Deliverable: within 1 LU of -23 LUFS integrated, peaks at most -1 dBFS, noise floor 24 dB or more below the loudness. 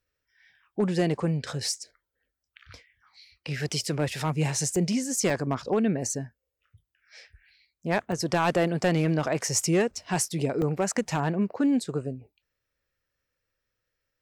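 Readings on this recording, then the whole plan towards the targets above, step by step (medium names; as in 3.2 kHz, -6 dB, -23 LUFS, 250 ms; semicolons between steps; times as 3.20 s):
clipped samples 0.2%; clipping level -16.0 dBFS; dropouts 4; longest dropout 1.6 ms; loudness -27.0 LUFS; peak level -16.0 dBFS; loudness target -23.0 LUFS
-> clip repair -16 dBFS; interpolate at 4.76/5.30/8.12/10.62 s, 1.6 ms; trim +4 dB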